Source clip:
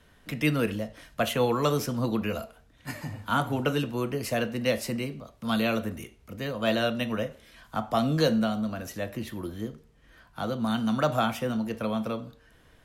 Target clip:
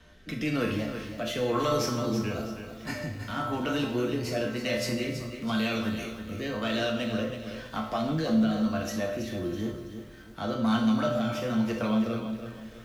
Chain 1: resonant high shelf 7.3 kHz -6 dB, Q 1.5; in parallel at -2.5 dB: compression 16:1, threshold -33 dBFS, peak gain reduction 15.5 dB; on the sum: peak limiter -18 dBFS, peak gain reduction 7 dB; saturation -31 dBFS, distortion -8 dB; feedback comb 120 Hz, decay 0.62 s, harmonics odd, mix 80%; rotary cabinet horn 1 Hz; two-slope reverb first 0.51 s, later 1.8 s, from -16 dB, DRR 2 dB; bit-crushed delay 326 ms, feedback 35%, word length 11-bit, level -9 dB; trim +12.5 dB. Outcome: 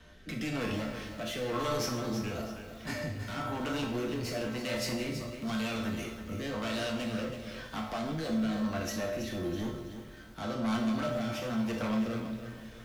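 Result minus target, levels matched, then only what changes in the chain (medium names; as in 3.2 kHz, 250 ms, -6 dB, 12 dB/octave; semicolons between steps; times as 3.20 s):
saturation: distortion +13 dB; compression: peak gain reduction -6 dB
change: compression 16:1, threshold -39.5 dBFS, peak gain reduction 21.5 dB; change: saturation -19.5 dBFS, distortion -21 dB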